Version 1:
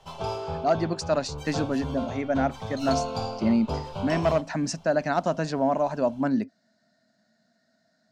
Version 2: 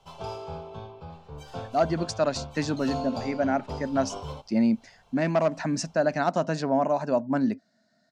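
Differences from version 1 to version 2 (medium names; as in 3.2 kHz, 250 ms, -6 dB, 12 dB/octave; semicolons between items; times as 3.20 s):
speech: entry +1.10 s; background -5.0 dB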